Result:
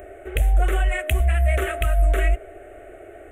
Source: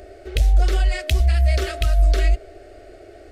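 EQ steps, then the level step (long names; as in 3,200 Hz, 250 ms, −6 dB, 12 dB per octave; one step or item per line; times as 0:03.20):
Butterworth band-reject 4,800 Hz, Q 0.76
low-shelf EQ 470 Hz −7.5 dB
+5.0 dB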